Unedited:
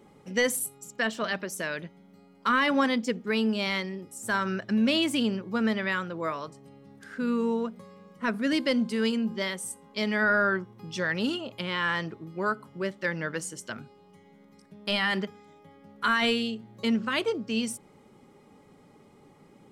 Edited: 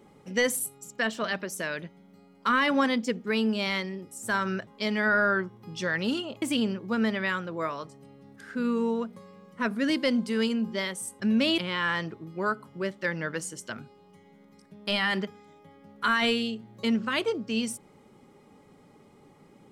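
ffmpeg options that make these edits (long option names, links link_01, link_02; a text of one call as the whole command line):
ffmpeg -i in.wav -filter_complex "[0:a]asplit=5[link_01][link_02][link_03][link_04][link_05];[link_01]atrim=end=4.672[link_06];[link_02]atrim=start=9.828:end=11.582[link_07];[link_03]atrim=start=5.048:end=9.832[link_08];[link_04]atrim=start=4.668:end=5.052[link_09];[link_05]atrim=start=11.578[link_10];[link_06][link_07]acrossfade=duration=0.004:curve1=hsin:curve2=hsin[link_11];[link_11][link_08]acrossfade=duration=0.004:curve1=hsin:curve2=hsin[link_12];[link_12][link_09]acrossfade=duration=0.004:curve1=hsin:curve2=hsin[link_13];[link_13][link_10]acrossfade=duration=0.004:curve1=hsin:curve2=hsin" out.wav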